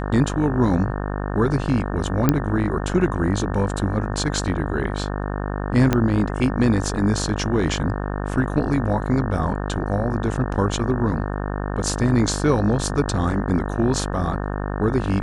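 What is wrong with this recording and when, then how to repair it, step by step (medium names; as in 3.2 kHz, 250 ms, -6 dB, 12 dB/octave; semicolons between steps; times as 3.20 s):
buzz 50 Hz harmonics 36 -26 dBFS
2.29 s: pop -3 dBFS
5.93 s: pop -5 dBFS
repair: de-click; de-hum 50 Hz, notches 36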